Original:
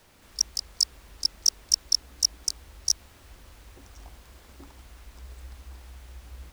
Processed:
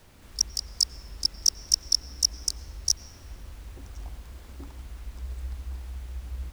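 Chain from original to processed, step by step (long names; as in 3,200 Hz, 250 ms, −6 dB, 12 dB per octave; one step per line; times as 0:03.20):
low-shelf EQ 250 Hz +8.5 dB
convolution reverb RT60 1.3 s, pre-delay 85 ms, DRR 17 dB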